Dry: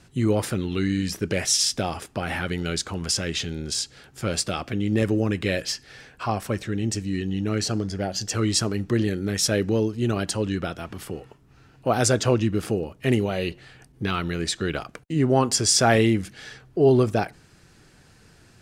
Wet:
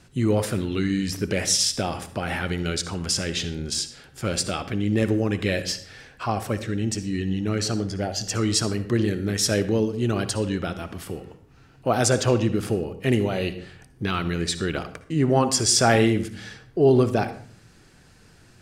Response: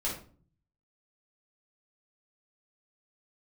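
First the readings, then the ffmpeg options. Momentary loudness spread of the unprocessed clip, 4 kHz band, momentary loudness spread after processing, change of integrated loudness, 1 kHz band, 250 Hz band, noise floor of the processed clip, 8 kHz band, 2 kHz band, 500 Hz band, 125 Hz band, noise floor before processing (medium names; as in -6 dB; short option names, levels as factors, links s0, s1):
12 LU, 0.0 dB, 12 LU, +0.5 dB, +0.5 dB, +0.5 dB, -53 dBFS, 0.0 dB, +0.5 dB, +0.5 dB, +0.5 dB, -54 dBFS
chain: -filter_complex "[0:a]asplit=2[s0][s1];[1:a]atrim=start_sample=2205,asetrate=37926,aresample=44100,adelay=57[s2];[s1][s2]afir=irnorm=-1:irlink=0,volume=0.126[s3];[s0][s3]amix=inputs=2:normalize=0"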